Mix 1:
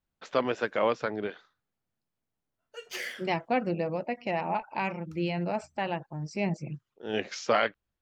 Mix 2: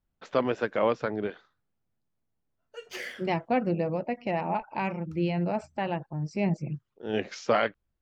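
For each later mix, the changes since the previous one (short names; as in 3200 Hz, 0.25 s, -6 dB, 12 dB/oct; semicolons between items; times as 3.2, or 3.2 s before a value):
master: add tilt -1.5 dB/oct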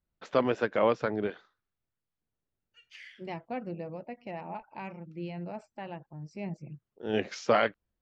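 second voice -10.5 dB; background: add ladder band-pass 3000 Hz, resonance 35%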